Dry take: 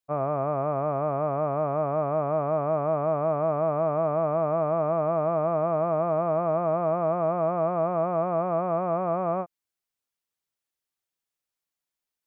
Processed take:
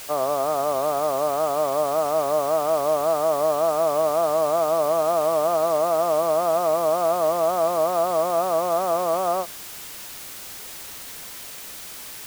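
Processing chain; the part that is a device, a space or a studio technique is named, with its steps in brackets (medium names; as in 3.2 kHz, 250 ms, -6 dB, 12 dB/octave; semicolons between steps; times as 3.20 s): wax cylinder (band-pass 370–2200 Hz; wow and flutter; white noise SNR 15 dB); trim +5 dB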